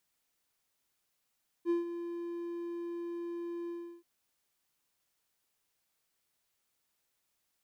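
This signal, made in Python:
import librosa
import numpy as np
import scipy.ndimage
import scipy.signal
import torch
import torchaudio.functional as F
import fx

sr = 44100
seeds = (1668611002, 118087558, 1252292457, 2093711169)

y = fx.adsr_tone(sr, wave='triangle', hz=343.0, attack_ms=50.0, decay_ms=144.0, sustain_db=-11.0, held_s=2.04, release_ms=340.0, level_db=-23.5)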